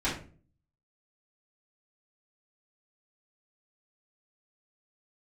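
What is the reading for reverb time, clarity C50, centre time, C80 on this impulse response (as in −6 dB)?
0.40 s, 6.0 dB, 33 ms, 11.5 dB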